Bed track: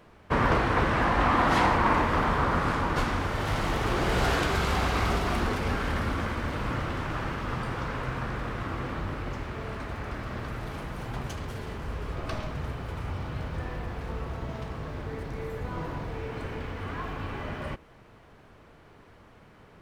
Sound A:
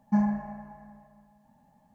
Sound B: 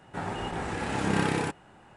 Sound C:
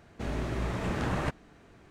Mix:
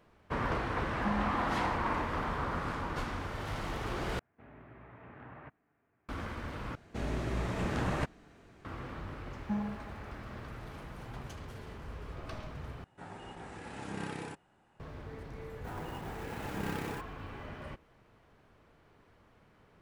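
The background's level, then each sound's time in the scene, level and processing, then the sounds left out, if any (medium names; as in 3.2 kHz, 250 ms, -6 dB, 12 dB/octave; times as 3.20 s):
bed track -9.5 dB
0.93 s: add A -3.5 dB + compression 2:1, threshold -34 dBFS
4.19 s: replace with C -16.5 dB + cabinet simulation 110–2300 Hz, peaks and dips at 190 Hz -9 dB, 350 Hz -5 dB, 520 Hz -5 dB
6.75 s: replace with C -2 dB
9.37 s: add A -10.5 dB + bit crusher 11-bit
12.84 s: replace with B -13.5 dB
15.50 s: add B -11 dB + sampling jitter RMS 0.021 ms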